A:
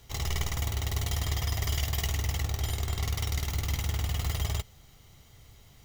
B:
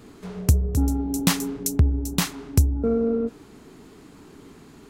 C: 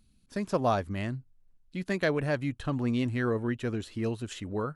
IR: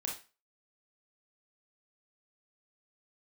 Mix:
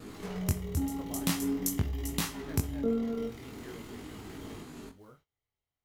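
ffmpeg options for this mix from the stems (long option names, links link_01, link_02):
-filter_complex "[0:a]bass=frequency=250:gain=-9,treble=frequency=4000:gain=-11,volume=-13.5dB,asplit=2[link_01][link_02];[link_02]volume=-5.5dB[link_03];[1:a]acompressor=threshold=-37dB:ratio=2,volume=2dB,asplit=2[link_04][link_05];[link_05]volume=-8.5dB[link_06];[2:a]acrusher=bits=5:mode=log:mix=0:aa=0.000001,adelay=450,volume=-20dB,asplit=2[link_07][link_08];[link_08]volume=-16dB[link_09];[3:a]atrim=start_sample=2205[link_10];[link_03][link_06][link_09]amix=inputs=3:normalize=0[link_11];[link_11][link_10]afir=irnorm=-1:irlink=0[link_12];[link_01][link_04][link_07][link_12]amix=inputs=4:normalize=0,agate=range=-18dB:threshold=-58dB:ratio=16:detection=peak,equalizer=frequency=12000:width=1.8:gain=4,flanger=delay=19:depth=4.3:speed=0.46"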